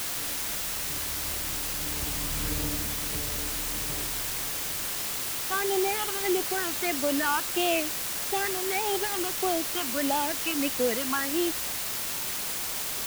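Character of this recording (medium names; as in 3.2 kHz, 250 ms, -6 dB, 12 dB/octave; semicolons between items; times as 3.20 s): phasing stages 8, 1.6 Hz, lowest notch 560–1800 Hz; a quantiser's noise floor 6-bit, dither triangular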